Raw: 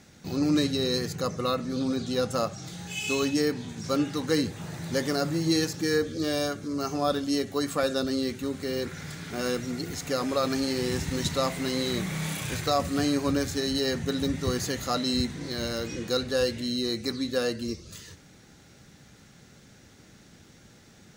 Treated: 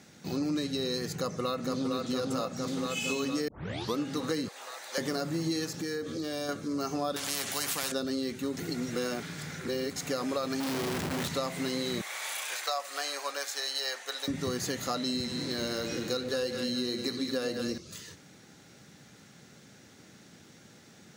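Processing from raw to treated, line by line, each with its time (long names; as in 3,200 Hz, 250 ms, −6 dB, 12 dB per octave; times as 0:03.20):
0:01.16–0:01.94: delay throw 460 ms, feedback 75%, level −2.5 dB
0:03.48: tape start 0.50 s
0:04.48–0:04.98: high-pass filter 600 Hz 24 dB per octave
0:05.71–0:06.49: downward compressor 4 to 1, threshold −31 dBFS
0:07.16–0:07.92: every bin compressed towards the loudest bin 4 to 1
0:08.57–0:09.96: reverse
0:10.60–0:11.28: comparator with hysteresis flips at −36 dBFS
0:12.01–0:14.28: high-pass filter 630 Hz 24 dB per octave
0:14.97–0:17.78: echo with a time of its own for lows and highs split 810 Hz, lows 113 ms, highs 206 ms, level −8 dB
whole clip: high-pass filter 130 Hz 12 dB per octave; downward compressor, threshold −28 dBFS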